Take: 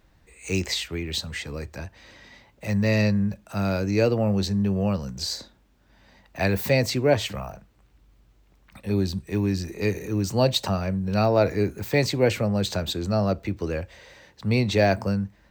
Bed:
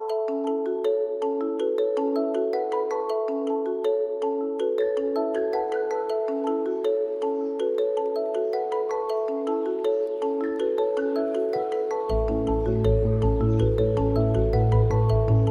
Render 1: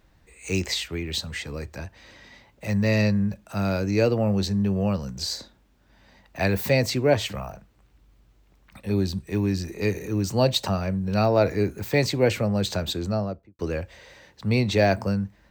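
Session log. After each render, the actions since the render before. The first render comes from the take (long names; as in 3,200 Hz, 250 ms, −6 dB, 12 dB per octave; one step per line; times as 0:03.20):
0:12.96–0:13.59: fade out and dull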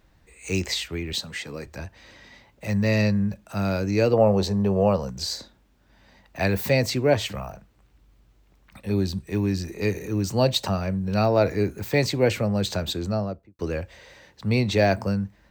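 0:01.13–0:01.67: high-pass filter 150 Hz
0:04.13–0:05.10: flat-topped bell 670 Hz +9 dB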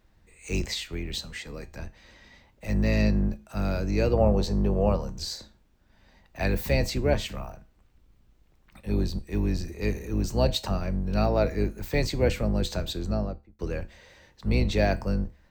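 sub-octave generator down 2 octaves, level +2 dB
tuned comb filter 71 Hz, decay 0.33 s, harmonics odd, mix 50%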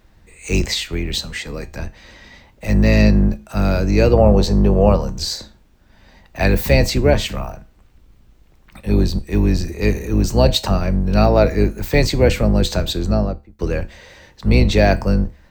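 level +10.5 dB
brickwall limiter −2 dBFS, peak gain reduction 2 dB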